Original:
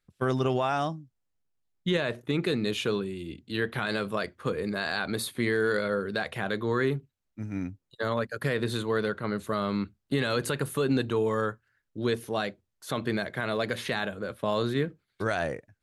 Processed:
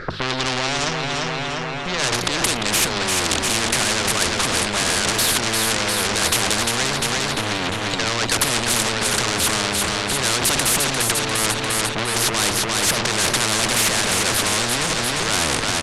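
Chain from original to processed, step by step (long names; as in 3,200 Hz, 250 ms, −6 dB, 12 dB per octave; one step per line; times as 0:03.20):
rippled gain that drifts along the octave scale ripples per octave 0.57, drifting −0.99 Hz, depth 13 dB
compressor whose output falls as the input rises −35 dBFS, ratio −1
low-pass that shuts in the quiet parts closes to 2,000 Hz, open at −28 dBFS
tube saturation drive 41 dB, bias 0.45
low-pass filter 10,000 Hz 24 dB per octave
low-shelf EQ 430 Hz +7.5 dB
mains-hum notches 50/100/150/200 Hz
repeating echo 349 ms, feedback 53%, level −8 dB
boost into a limiter +35.5 dB
every bin compressed towards the loudest bin 4 to 1
level −1 dB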